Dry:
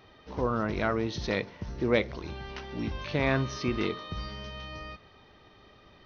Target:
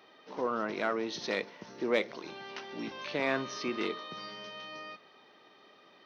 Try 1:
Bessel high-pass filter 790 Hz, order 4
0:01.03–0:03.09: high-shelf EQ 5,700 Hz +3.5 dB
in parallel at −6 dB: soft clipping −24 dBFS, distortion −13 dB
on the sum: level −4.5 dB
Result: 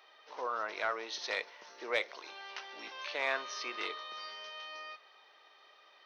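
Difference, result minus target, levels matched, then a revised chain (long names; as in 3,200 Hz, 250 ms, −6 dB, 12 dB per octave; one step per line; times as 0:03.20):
250 Hz band −14.5 dB
Bessel high-pass filter 300 Hz, order 4
0:01.03–0:03.09: high-shelf EQ 5,700 Hz +3.5 dB
in parallel at −6 dB: soft clipping −24 dBFS, distortion −11 dB
on the sum: level −4.5 dB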